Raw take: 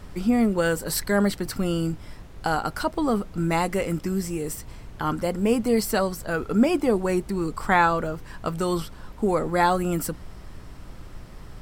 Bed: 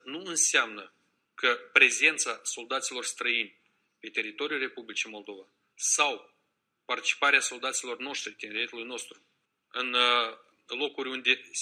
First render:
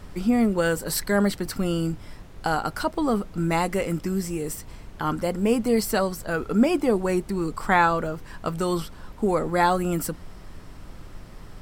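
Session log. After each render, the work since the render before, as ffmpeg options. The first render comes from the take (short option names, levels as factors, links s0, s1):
-af "bandreject=f=60:t=h:w=4,bandreject=f=120:t=h:w=4"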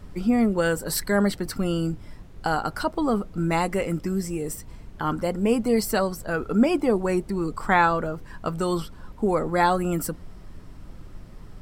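-af "afftdn=nr=6:nf=-44"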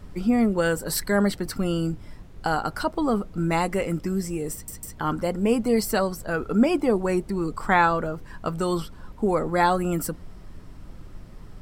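-filter_complex "[0:a]asplit=4[s0][s1][s2][s3];[s0]atrim=end=4.682[s4];[s1]atrim=start=4.528:end=4.682[s5];[s2]atrim=start=4.528:end=4.682[s6];[s3]atrim=start=4.978[s7];[s4][s5]acrossfade=d=0.004:c1=hsin:c2=hsin[s8];[s8][s6]acrossfade=d=0.004:c1=hsin:c2=hsin[s9];[s9][s7]acrossfade=d=0.004:c1=hsin:c2=hsin"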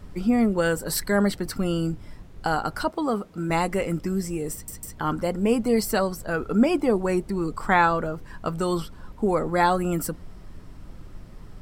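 -filter_complex "[0:a]asettb=1/sr,asplit=3[s0][s1][s2];[s0]atrim=end=2.904[s3];[s1]atrim=start=2.9:end=3.5,asetpts=PTS-STARTPTS,afade=t=in:d=0.004:c=qsin,afade=t=out:st=0.596:d=0.004:c=qsin,highpass=f=250:p=1[s4];[s2]atrim=start=3.496[s5];[s3][s4]acrossfade=d=0.004:c1=hsin:c2=qsin[s6];[s6][s5]acrossfade=d=0.004:c1=qsin:c2=hsin"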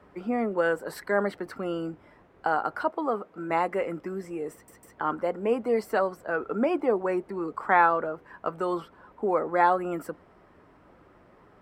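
-filter_complex "[0:a]highpass=62,acrossover=split=320 2300:gain=0.141 1 0.112[s0][s1][s2];[s0][s1][s2]amix=inputs=3:normalize=0"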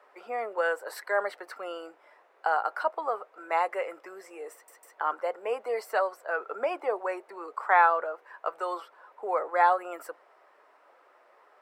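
-af "highpass=f=520:w=0.5412,highpass=f=520:w=1.3066,bandreject=f=3200:w=25"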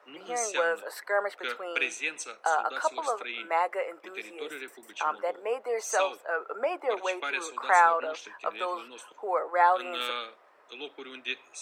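-filter_complex "[1:a]volume=0.335[s0];[0:a][s0]amix=inputs=2:normalize=0"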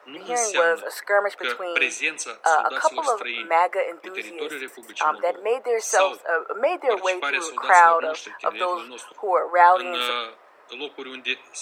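-af "volume=2.37,alimiter=limit=0.708:level=0:latency=1"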